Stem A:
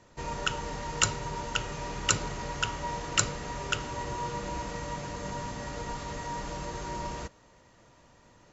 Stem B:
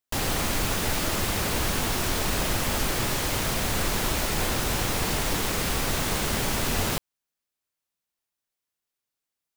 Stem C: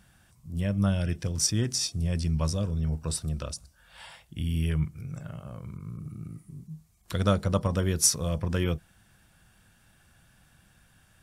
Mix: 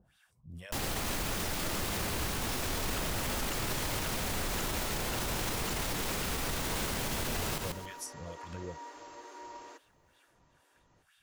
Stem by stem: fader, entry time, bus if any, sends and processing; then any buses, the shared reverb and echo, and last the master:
−9.0 dB, 2.50 s, no send, no echo send, Chebyshev high-pass with heavy ripple 260 Hz, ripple 3 dB
−1.5 dB, 0.60 s, no send, echo send −9 dB, no processing
−6.5 dB, 0.00 s, no send, no echo send, two-band tremolo in antiphase 2.2 Hz, depth 100%, crossover 890 Hz; downward compressor, threshold −34 dBFS, peak gain reduction 14 dB; auto-filter bell 3 Hz 430–3,800 Hz +12 dB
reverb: not used
echo: repeating echo 138 ms, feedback 24%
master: brickwall limiter −24.5 dBFS, peak gain reduction 10.5 dB

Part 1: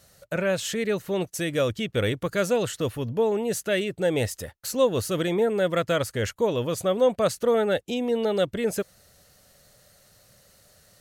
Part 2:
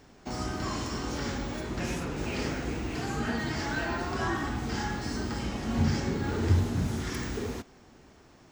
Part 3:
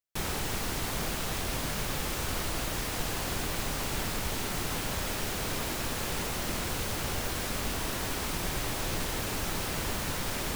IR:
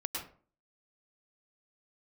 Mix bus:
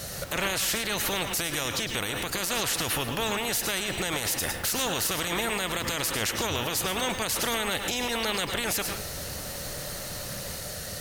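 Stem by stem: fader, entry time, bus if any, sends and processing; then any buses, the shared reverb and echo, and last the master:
+1.5 dB, 0.00 s, send −5 dB, parametric band 1,100 Hz −2.5 dB; notch filter 7,700 Hz, Q 19; every bin compressed towards the loudest bin 4 to 1
−13.0 dB, 0.00 s, no send, no processing
−8.0 dB, 0.00 s, send −9.5 dB, automatic ducking −10 dB, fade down 0.20 s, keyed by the first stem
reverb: on, RT60 0.45 s, pre-delay 97 ms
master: brickwall limiter −17.5 dBFS, peak gain reduction 10.5 dB

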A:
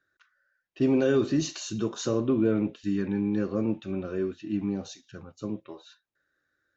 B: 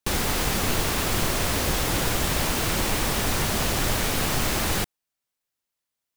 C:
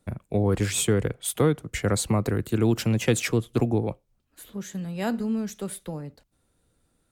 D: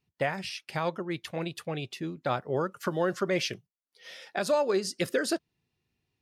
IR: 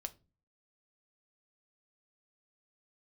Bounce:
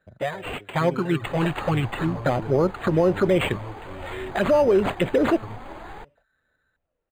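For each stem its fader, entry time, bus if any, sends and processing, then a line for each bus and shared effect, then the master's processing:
+1.5 dB, 0.00 s, bus B, no send, low-shelf EQ 330 Hz +7 dB; brickwall limiter −20 dBFS, peak gain reduction 10 dB; drawn EQ curve 130 Hz 0 dB, 200 Hz −17 dB, 860 Hz +7 dB
−11.0 dB, 1.20 s, bus A, no send, brick-wall band-stop 2,300–6,800 Hz; parametric band 850 Hz +10.5 dB 0.76 octaves
−16.0 dB, 0.00 s, bus A, no send, downward compressor 2.5 to 1, threshold −37 dBFS, peak gain reduction 14 dB; parametric band 610 Hz +13.5 dB 0.96 octaves
+3.0 dB, 0.00 s, bus B, no send, automatic gain control gain up to 11.5 dB
bus A: 0.0 dB, phase shifter 0.46 Hz, delay 4.7 ms, feedback 51%; downward compressor 4 to 1, threshold −36 dBFS, peak gain reduction 9.5 dB
bus B: 0.0 dB, flanger swept by the level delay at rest 4.6 ms, full sweep at −10.5 dBFS; brickwall limiter −10.5 dBFS, peak gain reduction 7.5 dB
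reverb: not used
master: linearly interpolated sample-rate reduction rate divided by 8×

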